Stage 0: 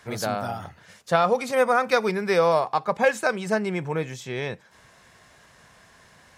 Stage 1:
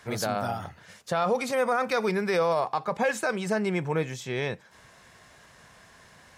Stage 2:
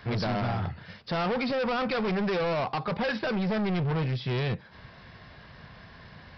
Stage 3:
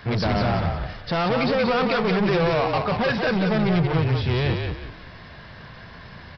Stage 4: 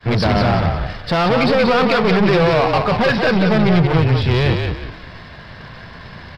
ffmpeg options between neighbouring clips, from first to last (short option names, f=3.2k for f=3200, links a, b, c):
-af "alimiter=limit=-16.5dB:level=0:latency=1:release=29"
-af "bass=f=250:g=9,treble=f=4k:g=1,aresample=11025,asoftclip=type=hard:threshold=-29dB,aresample=44100,volume=3dB"
-filter_complex "[0:a]asplit=5[a][b][c][d][e];[b]adelay=180,afreqshift=-36,volume=-4.5dB[f];[c]adelay=360,afreqshift=-72,volume=-14.4dB[g];[d]adelay=540,afreqshift=-108,volume=-24.3dB[h];[e]adelay=720,afreqshift=-144,volume=-34.2dB[i];[a][f][g][h][i]amix=inputs=5:normalize=0,volume=5.5dB"
-af "aeval=exprs='if(lt(val(0),0),0.708*val(0),val(0))':c=same,agate=range=-33dB:threshold=-41dB:ratio=3:detection=peak,volume=8dB"